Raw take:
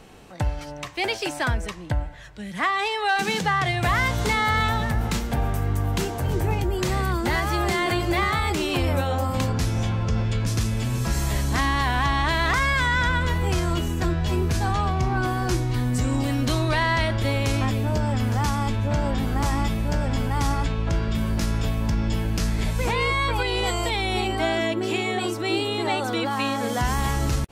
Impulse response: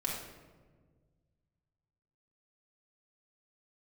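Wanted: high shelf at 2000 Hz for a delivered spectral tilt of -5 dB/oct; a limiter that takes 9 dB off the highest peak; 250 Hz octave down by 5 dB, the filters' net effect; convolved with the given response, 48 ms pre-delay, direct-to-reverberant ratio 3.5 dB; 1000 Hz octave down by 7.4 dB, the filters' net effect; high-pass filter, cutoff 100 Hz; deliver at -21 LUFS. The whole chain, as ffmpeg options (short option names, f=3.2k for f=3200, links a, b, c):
-filter_complex "[0:a]highpass=100,equalizer=f=250:t=o:g=-6,equalizer=f=1k:t=o:g=-7.5,highshelf=f=2k:g=-7,alimiter=level_in=1dB:limit=-24dB:level=0:latency=1,volume=-1dB,asplit=2[a][b];[1:a]atrim=start_sample=2205,adelay=48[c];[b][c]afir=irnorm=-1:irlink=0,volume=-7.5dB[d];[a][d]amix=inputs=2:normalize=0,volume=10.5dB"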